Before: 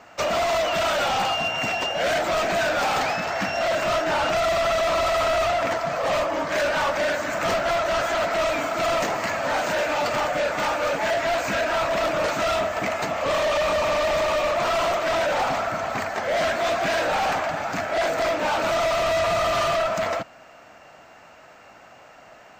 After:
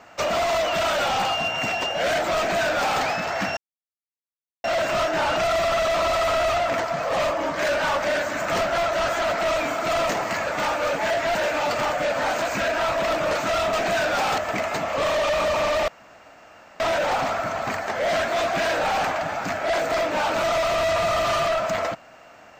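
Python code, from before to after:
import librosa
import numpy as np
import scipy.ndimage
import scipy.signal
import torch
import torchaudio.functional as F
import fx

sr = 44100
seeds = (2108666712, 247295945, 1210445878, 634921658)

y = fx.edit(x, sr, fx.duplicate(start_s=2.37, length_s=0.65, to_s=12.66),
    fx.insert_silence(at_s=3.57, length_s=1.07),
    fx.swap(start_s=9.4, length_s=0.3, other_s=10.47, other_length_s=0.88),
    fx.room_tone_fill(start_s=14.16, length_s=0.92), tone=tone)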